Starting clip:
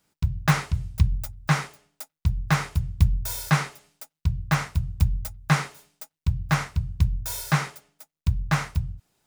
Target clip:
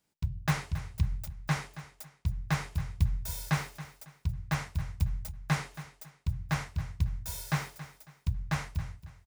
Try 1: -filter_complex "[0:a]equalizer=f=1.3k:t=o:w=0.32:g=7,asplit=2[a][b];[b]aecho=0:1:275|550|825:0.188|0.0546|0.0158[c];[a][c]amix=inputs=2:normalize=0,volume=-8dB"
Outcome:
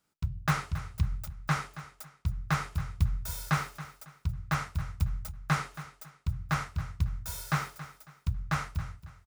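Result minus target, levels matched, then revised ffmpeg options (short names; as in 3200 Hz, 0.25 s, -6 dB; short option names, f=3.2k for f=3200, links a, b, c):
1000 Hz band +4.0 dB
-filter_complex "[0:a]equalizer=f=1.3k:t=o:w=0.32:g=-4.5,asplit=2[a][b];[b]aecho=0:1:275|550|825:0.188|0.0546|0.0158[c];[a][c]amix=inputs=2:normalize=0,volume=-8dB"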